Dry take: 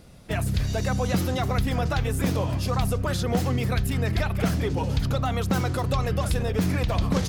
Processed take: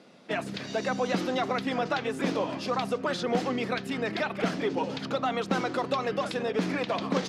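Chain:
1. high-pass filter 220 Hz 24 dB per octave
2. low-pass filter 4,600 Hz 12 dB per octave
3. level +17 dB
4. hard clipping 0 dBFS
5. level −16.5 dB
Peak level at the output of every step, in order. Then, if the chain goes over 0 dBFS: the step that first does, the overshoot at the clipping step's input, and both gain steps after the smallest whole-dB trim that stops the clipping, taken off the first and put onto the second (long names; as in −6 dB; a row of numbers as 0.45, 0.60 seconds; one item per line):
−11.0, −11.0, +6.0, 0.0, −16.5 dBFS
step 3, 6.0 dB
step 3 +11 dB, step 5 −10.5 dB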